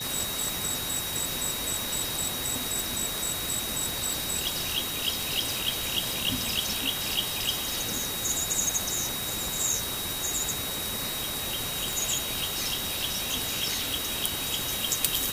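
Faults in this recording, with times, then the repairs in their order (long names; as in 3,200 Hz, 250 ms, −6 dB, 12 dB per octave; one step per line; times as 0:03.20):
whistle 3,800 Hz −35 dBFS
0:04.13: click
0:11.93: click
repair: click removal
notch filter 3,800 Hz, Q 30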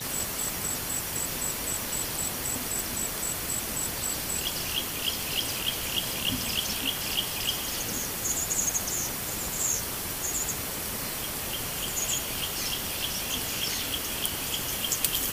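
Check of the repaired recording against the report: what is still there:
none of them is left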